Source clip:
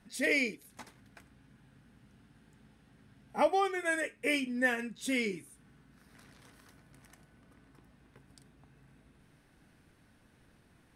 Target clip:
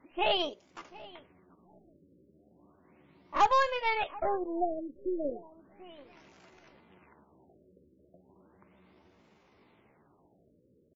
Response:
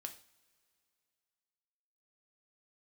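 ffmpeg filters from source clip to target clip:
-filter_complex "[0:a]highpass=f=64:p=1,equalizer=f=610:w=0.78:g=8,aeval=exprs='0.2*(cos(1*acos(clip(val(0)/0.2,-1,1)))-cos(1*PI/2))+0.00631*(cos(5*acos(clip(val(0)/0.2,-1,1)))-cos(5*PI/2))+0.02*(cos(6*acos(clip(val(0)/0.2,-1,1)))-cos(6*PI/2))':c=same,asetrate=60591,aresample=44100,atempo=0.727827,asplit=2[s0][s1];[s1]adelay=735,lowpass=f=2800:p=1,volume=0.1,asplit=2[s2][s3];[s3]adelay=735,lowpass=f=2800:p=1,volume=0.2[s4];[s0][s2][s4]amix=inputs=3:normalize=0,afftfilt=real='re*lt(b*sr/1024,570*pow(7500/570,0.5+0.5*sin(2*PI*0.35*pts/sr)))':imag='im*lt(b*sr/1024,570*pow(7500/570,0.5+0.5*sin(2*PI*0.35*pts/sr)))':win_size=1024:overlap=0.75,volume=0.708"

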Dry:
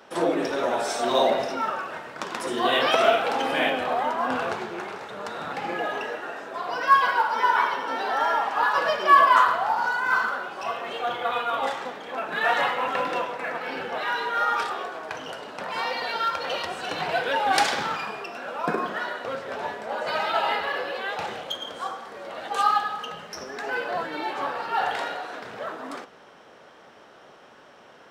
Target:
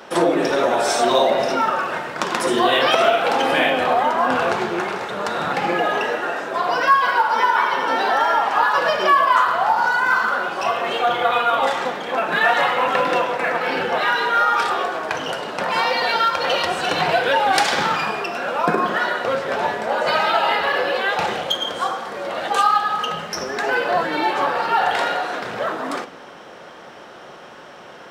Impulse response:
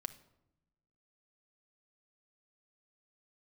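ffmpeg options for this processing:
-filter_complex "[0:a]acompressor=threshold=0.0501:ratio=2.5,asplit=2[s0][s1];[1:a]atrim=start_sample=2205[s2];[s1][s2]afir=irnorm=-1:irlink=0,volume=2.99[s3];[s0][s3]amix=inputs=2:normalize=0"

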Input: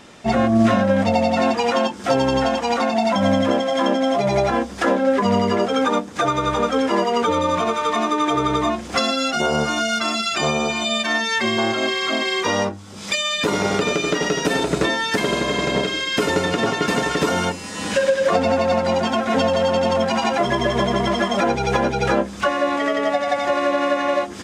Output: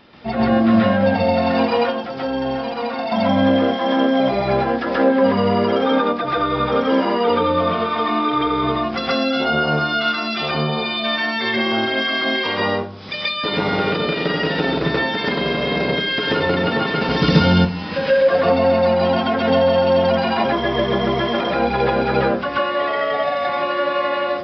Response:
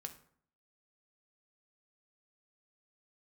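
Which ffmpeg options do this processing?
-filter_complex "[0:a]asettb=1/sr,asplit=3[s0][s1][s2];[s0]atrim=end=1.764[s3];[s1]atrim=start=1.76:end=2.99,asetpts=PTS-STARTPTS,afade=t=in:d=0.004:c=qsin,afade=t=out:st=1.226:d=0.004:c=qsin,acompressor=threshold=0.0562:ratio=2.5[s4];[s2]atrim=start=2.986[s5];[s3][s4]acrossfade=d=0.004:c1=hsin:c2=qsin[s6];[s6][s5]acrossfade=d=0.004:c1=qsin:c2=hsin,asettb=1/sr,asplit=3[s7][s8][s9];[s7]atrim=end=17.084[s10];[s8]atrim=start=17.08:end=17.52,asetpts=PTS-STARTPTS,afade=t=in:d=0.004:c=qsin,afade=t=out:st=0.436:d=0.004:c=qsin,bass=f=250:g=13,treble=f=4000:g=15[s11];[s9]atrim=start=17.516[s12];[s10][s11]acrossfade=d=0.004:c1=hsin:c2=qsin[s13];[s13][s12]acrossfade=d=0.004:c1=qsin:c2=hsin,asplit=2[s14][s15];[1:a]atrim=start_sample=2205,adelay=132[s16];[s15][s16]afir=irnorm=-1:irlink=0,volume=2.51[s17];[s14][s17]amix=inputs=2:normalize=0,aresample=11025,aresample=44100,volume=0.562"

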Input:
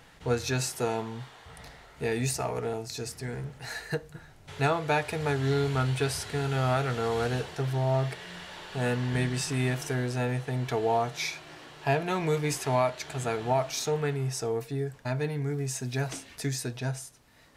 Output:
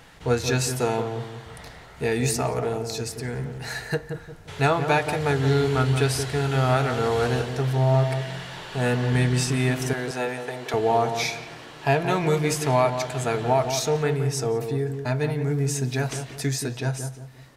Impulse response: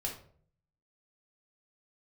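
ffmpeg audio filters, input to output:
-filter_complex "[0:a]asettb=1/sr,asplit=3[s0][s1][s2];[s0]atrim=end=9.934[s3];[s1]atrim=start=9.93:end=10.74,asetpts=PTS-STARTPTS,afade=t=in:d=0.004:c=qsin,afade=t=out:st=0.806:d=0.004:c=qsin,highpass=400[s4];[s2]atrim=start=10.736[s5];[s3][s4]acrossfade=d=0.004:c1=hsin:c2=qsin[s6];[s6][s5]acrossfade=d=0.004:c1=qsin:c2=hsin,asplit=2[s7][s8];[s8]adelay=176,lowpass=f=1000:p=1,volume=0.473,asplit=2[s9][s10];[s10]adelay=176,lowpass=f=1000:p=1,volume=0.39,asplit=2[s11][s12];[s12]adelay=176,lowpass=f=1000:p=1,volume=0.39,asplit=2[s13][s14];[s14]adelay=176,lowpass=f=1000:p=1,volume=0.39,asplit=2[s15][s16];[s16]adelay=176,lowpass=f=1000:p=1,volume=0.39[s17];[s9][s11][s13][s15][s17]amix=inputs=5:normalize=0[s18];[s7][s18]amix=inputs=2:normalize=0,volume=1.78"

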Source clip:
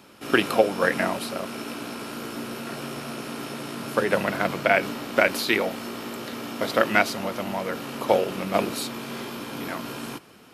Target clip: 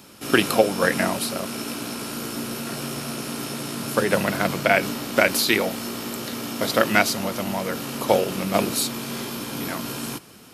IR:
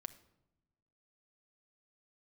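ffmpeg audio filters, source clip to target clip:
-af "bass=f=250:g=5,treble=f=4000:g=9,volume=1.12"

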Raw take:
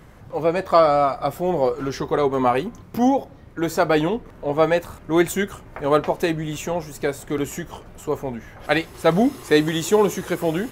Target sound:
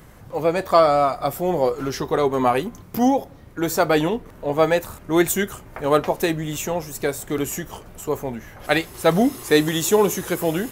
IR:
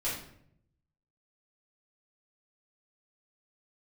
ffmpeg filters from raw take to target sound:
-af "highshelf=f=7600:g=11.5"

